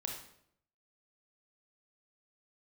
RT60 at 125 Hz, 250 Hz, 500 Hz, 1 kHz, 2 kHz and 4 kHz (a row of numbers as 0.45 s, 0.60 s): 0.85 s, 0.80 s, 0.75 s, 0.65 s, 0.60 s, 0.55 s